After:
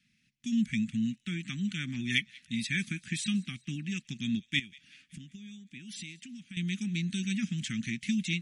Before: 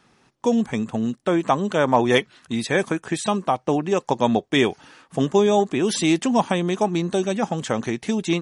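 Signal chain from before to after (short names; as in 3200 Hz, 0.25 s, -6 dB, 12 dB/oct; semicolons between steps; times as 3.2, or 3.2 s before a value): AGC; high shelf 2700 Hz -11 dB; 4.59–6.57 compressor 8:1, threshold -28 dBFS, peak gain reduction 19 dB; elliptic band-stop 210–2200 Hz, stop band 50 dB; low shelf 260 Hz -12 dB; thin delay 0.187 s, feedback 49%, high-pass 1900 Hz, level -23 dB; gain -2 dB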